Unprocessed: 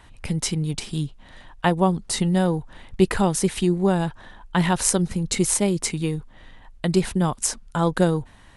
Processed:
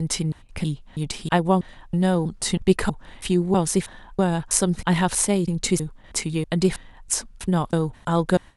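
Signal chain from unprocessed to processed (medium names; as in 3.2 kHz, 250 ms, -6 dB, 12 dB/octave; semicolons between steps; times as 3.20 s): slices played last to first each 322 ms, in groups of 2; gate with hold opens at -38 dBFS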